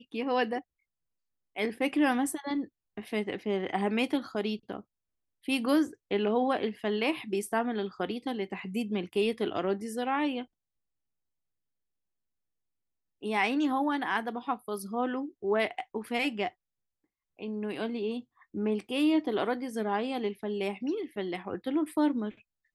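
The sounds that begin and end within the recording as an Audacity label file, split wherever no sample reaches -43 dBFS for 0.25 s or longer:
1.560000	2.650000	sound
2.970000	4.810000	sound
5.480000	10.440000	sound
13.230000	16.490000	sound
17.390000	18.210000	sound
18.540000	22.310000	sound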